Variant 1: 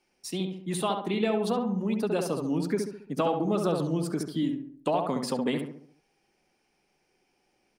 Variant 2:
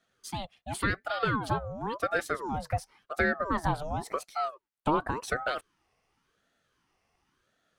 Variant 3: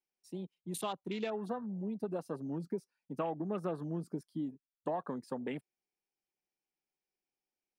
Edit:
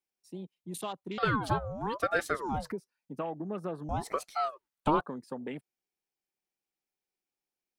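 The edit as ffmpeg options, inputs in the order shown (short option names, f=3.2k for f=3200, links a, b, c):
-filter_complex "[1:a]asplit=2[a][b];[2:a]asplit=3[c][d][e];[c]atrim=end=1.182[f];[a]atrim=start=1.178:end=2.722[g];[d]atrim=start=2.718:end=3.892[h];[b]atrim=start=3.888:end=5.012[i];[e]atrim=start=5.008[j];[f][g]acrossfade=d=0.004:c1=hsin:c2=hsin[k];[k][h]acrossfade=d=0.004:c1=hsin:c2=hsin[l];[l][i]acrossfade=d=0.004:c1=hsin:c2=hsin[m];[m][j]acrossfade=d=0.004:c1=hsin:c2=hsin"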